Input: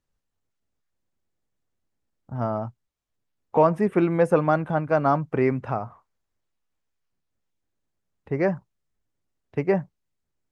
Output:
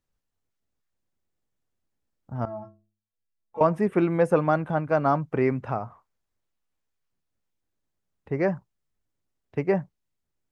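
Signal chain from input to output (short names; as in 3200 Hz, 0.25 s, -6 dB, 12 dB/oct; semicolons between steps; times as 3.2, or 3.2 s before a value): 2.45–3.61 metallic resonator 99 Hz, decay 0.53 s, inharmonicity 0.03; gain -1.5 dB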